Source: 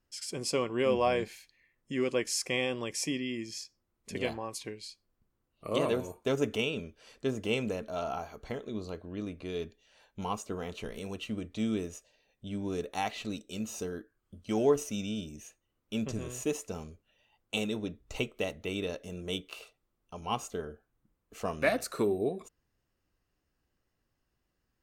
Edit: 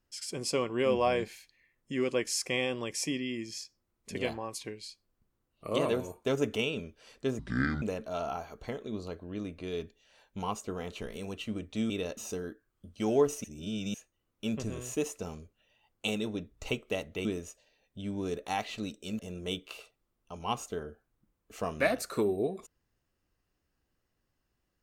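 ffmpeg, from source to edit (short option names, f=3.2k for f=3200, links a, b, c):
-filter_complex "[0:a]asplit=9[a][b][c][d][e][f][g][h][i];[a]atrim=end=7.394[j];[b]atrim=start=7.39:end=7.64,asetpts=PTS-STARTPTS,asetrate=25578,aresample=44100[k];[c]atrim=start=7.636:end=11.722[l];[d]atrim=start=18.738:end=19.012[m];[e]atrim=start=13.658:end=14.932[n];[f]atrim=start=14.928:end=15.432,asetpts=PTS-STARTPTS,areverse[o];[g]atrim=start=15.428:end=18.742[p];[h]atrim=start=11.718:end=13.662[q];[i]atrim=start=19.008[r];[j][k]acrossfade=d=0.004:c1=hsin:c2=hsin[s];[s][l]acrossfade=d=0.004:c1=hsin:c2=hsin[t];[t][m]acrossfade=d=0.004:c1=hsin:c2=hsin[u];[u][n]acrossfade=d=0.004:c1=hsin:c2=hsin[v];[v][o]acrossfade=d=0.004:c1=hsin:c2=hsin[w];[w][p]acrossfade=d=0.004:c1=hsin:c2=hsin[x];[x][q]acrossfade=d=0.004:c1=hsin:c2=hsin[y];[y][r]acrossfade=d=0.004:c1=hsin:c2=hsin"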